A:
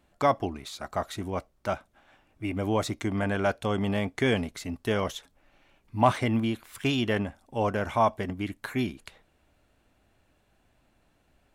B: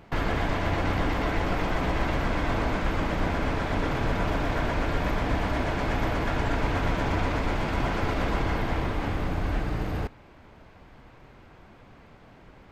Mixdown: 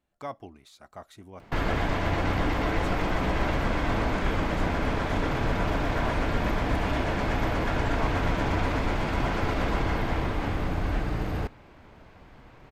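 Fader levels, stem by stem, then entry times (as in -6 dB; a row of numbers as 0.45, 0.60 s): -13.5, 0.0 dB; 0.00, 1.40 s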